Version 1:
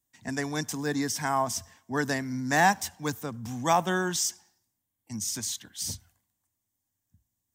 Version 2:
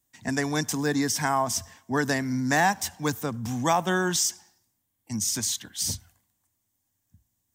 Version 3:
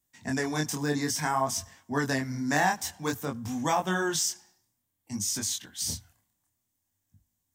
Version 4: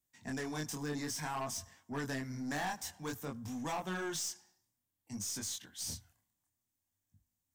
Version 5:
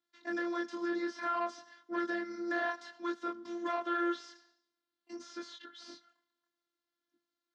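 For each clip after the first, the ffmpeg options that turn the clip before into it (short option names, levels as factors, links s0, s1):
-af "acompressor=threshold=0.0398:ratio=2,volume=1.88"
-af "flanger=delay=20:depth=7.6:speed=0.56"
-af "aeval=exprs='(tanh(20*val(0)+0.15)-tanh(0.15))/20':c=same,volume=0.447"
-filter_complex "[0:a]afftfilt=real='hypot(re,im)*cos(PI*b)':imag='0':win_size=512:overlap=0.75,highpass=f=220:w=0.5412,highpass=f=220:w=1.3066,equalizer=f=510:t=q:w=4:g=5,equalizer=f=810:t=q:w=4:g=-9,equalizer=f=1400:t=q:w=4:g=9,equalizer=f=2500:t=q:w=4:g=-6,equalizer=f=4200:t=q:w=4:g=4,lowpass=f=4500:w=0.5412,lowpass=f=4500:w=1.3066,acrossover=split=2500[s0][s1];[s1]acompressor=threshold=0.00126:ratio=4:attack=1:release=60[s2];[s0][s2]amix=inputs=2:normalize=0,volume=2.37"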